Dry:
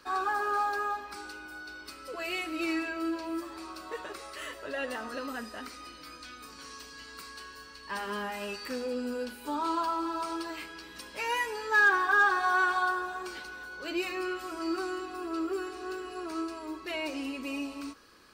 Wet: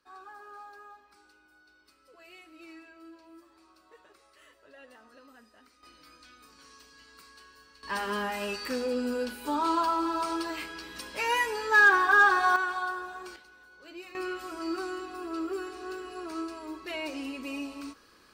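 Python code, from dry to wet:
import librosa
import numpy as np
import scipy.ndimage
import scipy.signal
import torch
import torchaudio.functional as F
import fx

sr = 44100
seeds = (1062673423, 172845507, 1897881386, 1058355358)

y = fx.gain(x, sr, db=fx.steps((0.0, -18.0), (5.83, -8.5), (7.83, 3.5), (12.56, -4.0), (13.36, -12.5), (14.15, -1.0)))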